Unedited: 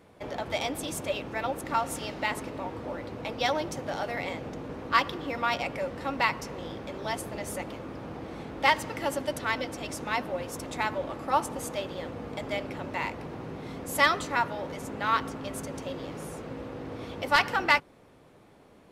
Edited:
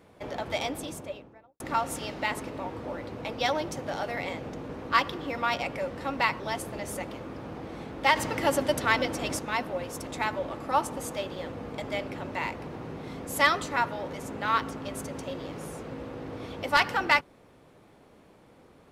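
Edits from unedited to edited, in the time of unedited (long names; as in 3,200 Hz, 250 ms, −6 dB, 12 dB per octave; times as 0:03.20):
0:00.57–0:01.60: fade out and dull
0:06.40–0:06.99: remove
0:08.75–0:09.98: clip gain +5 dB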